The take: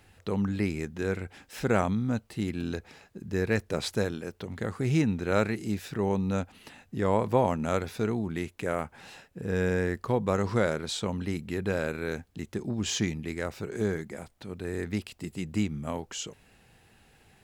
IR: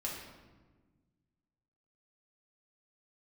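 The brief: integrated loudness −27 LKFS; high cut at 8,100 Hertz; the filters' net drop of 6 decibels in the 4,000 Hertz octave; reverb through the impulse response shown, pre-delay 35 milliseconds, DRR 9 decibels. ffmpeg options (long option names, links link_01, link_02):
-filter_complex "[0:a]lowpass=8100,equalizer=frequency=4000:width_type=o:gain=-7.5,asplit=2[link_01][link_02];[1:a]atrim=start_sample=2205,adelay=35[link_03];[link_02][link_03]afir=irnorm=-1:irlink=0,volume=-10.5dB[link_04];[link_01][link_04]amix=inputs=2:normalize=0,volume=3dB"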